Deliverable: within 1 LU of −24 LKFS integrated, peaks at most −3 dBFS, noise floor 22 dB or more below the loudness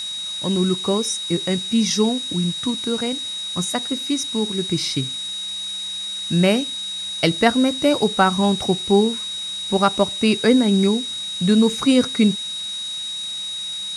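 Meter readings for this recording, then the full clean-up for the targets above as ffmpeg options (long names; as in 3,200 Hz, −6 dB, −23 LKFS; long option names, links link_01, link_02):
interfering tone 3,800 Hz; level of the tone −26 dBFS; background noise floor −29 dBFS; target noise floor −42 dBFS; integrated loudness −20.0 LKFS; sample peak −1.5 dBFS; target loudness −24.0 LKFS
→ -af "bandreject=frequency=3800:width=30"
-af "afftdn=noise_reduction=13:noise_floor=-29"
-af "volume=-4dB"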